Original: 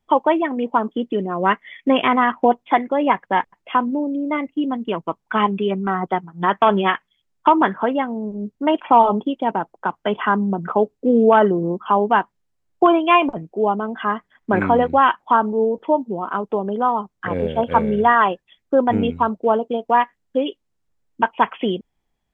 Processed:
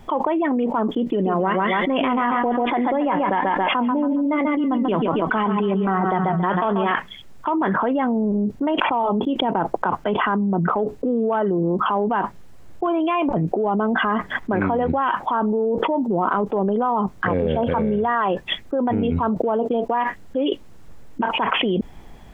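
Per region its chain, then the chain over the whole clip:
0:01.10–0:06.91: repeating echo 138 ms, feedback 34%, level −10 dB + flanger 1.2 Hz, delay 2.6 ms, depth 3.1 ms, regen +82%
whole clip: high-shelf EQ 2,100 Hz −8.5 dB; transient designer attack −4 dB, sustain +1 dB; envelope flattener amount 100%; level −8.5 dB

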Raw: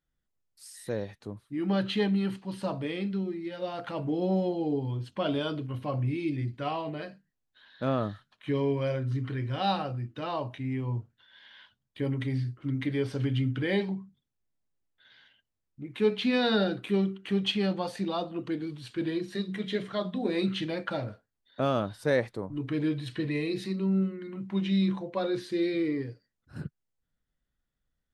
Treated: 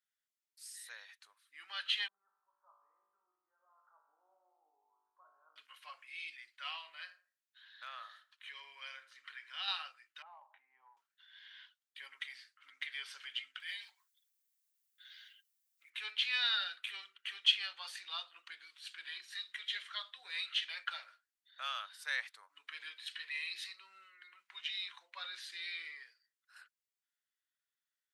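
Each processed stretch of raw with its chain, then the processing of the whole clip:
0:02.08–0:05.56: Butterworth low-pass 1,200 Hz 48 dB per octave + tuned comb filter 52 Hz, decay 1.3 s, mix 90%
0:06.78–0:09.68: downward compressor 1.5 to 1, threshold −32 dBFS + feedback echo with a low-pass in the loop 82 ms, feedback 31%, low-pass 1,300 Hz, level −10.5 dB
0:10.22–0:10.97: low-pass with resonance 820 Hz, resonance Q 6.2 + downward compressor 2.5 to 1, threshold −40 dBFS
0:13.60–0:15.90: comb filter 6.8 ms, depth 34% + downward compressor 8 to 1, threshold −35 dBFS + RIAA equalisation recording
whole clip: high-pass filter 1,400 Hz 24 dB per octave; dynamic equaliser 3,100 Hz, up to +5 dB, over −51 dBFS, Q 2.4; level −2 dB

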